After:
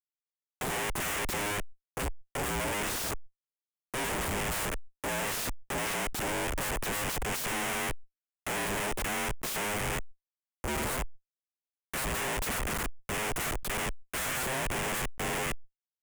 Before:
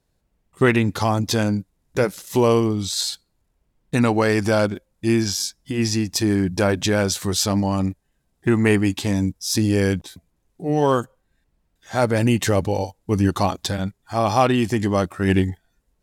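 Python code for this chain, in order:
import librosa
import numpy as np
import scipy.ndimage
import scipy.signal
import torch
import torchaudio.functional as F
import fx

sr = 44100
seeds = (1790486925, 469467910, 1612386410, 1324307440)

y = fx.band_invert(x, sr, width_hz=500)
y = fx.notch_comb(y, sr, f0_hz=340.0, at=(1.27, 4.25))
y = fx.echo_wet_highpass(y, sr, ms=119, feedback_pct=66, hz=2600.0, wet_db=-23.0)
y = fx.schmitt(y, sr, flips_db=-25.0)
y = fx.peak_eq(y, sr, hz=3000.0, db=10.5, octaves=1.9)
y = fx.fixed_phaser(y, sr, hz=490.0, stages=4)
y = fx.fold_sine(y, sr, drive_db=9, ceiling_db=-23.0)
y = fx.sustainer(y, sr, db_per_s=93.0)
y = y * 10.0 ** (-6.0 / 20.0)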